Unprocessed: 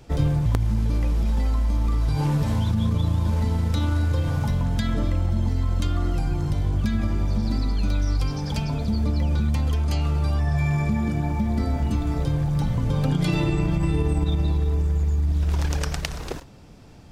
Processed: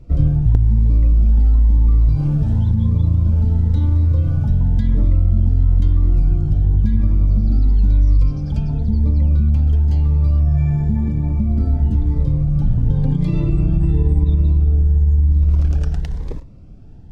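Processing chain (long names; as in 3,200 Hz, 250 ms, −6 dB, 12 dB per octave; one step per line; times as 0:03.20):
spectral tilt −3.5 dB per octave
phaser whose notches keep moving one way rising 0.97 Hz
level −5 dB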